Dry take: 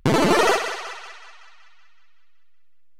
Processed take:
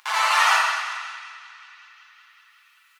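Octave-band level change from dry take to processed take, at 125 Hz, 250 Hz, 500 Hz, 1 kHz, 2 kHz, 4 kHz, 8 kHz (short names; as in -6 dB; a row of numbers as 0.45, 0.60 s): under -40 dB, under -40 dB, -17.5 dB, +2.0 dB, +4.5 dB, +2.5 dB, +1.0 dB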